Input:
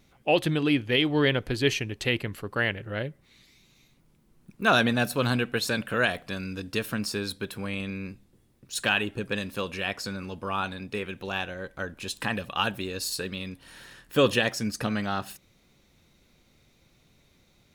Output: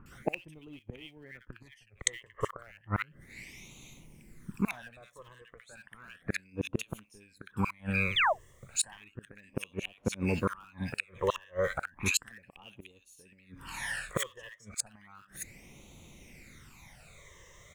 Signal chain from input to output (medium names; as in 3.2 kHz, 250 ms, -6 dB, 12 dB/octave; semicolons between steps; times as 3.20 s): graphic EQ 1/2/4/8 kHz +7/+10/-6/+9 dB; phase shifter stages 12, 0.33 Hz, lowest notch 240–1700 Hz; in parallel at -5.5 dB: Schmitt trigger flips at -18 dBFS; on the sum: companded quantiser 8-bit; 8.10–8.33 s: painted sound fall 560–3700 Hz -33 dBFS; inverted gate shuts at -22 dBFS, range -35 dB; bands offset in time lows, highs 60 ms, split 1.5 kHz; 0.79–2.27 s: three bands expanded up and down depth 70%; trim +8 dB